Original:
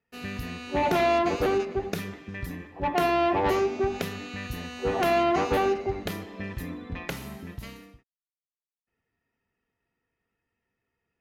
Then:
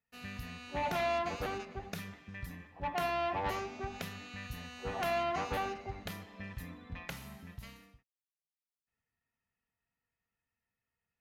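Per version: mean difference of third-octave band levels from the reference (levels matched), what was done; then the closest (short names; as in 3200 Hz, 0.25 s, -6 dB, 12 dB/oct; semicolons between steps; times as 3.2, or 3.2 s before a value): 3.0 dB: bell 360 Hz -11.5 dB 0.87 oct; gain -7.5 dB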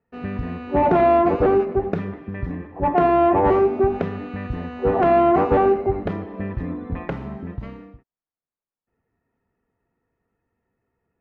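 6.5 dB: LPF 1200 Hz 12 dB/oct; gain +8 dB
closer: first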